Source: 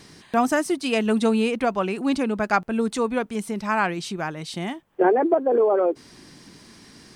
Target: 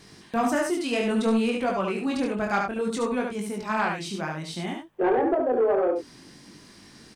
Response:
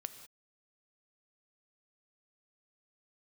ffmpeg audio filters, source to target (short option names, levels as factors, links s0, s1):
-af "flanger=delay=20:depth=5.5:speed=0.6,aecho=1:1:72:0.562,asoftclip=type=tanh:threshold=0.178"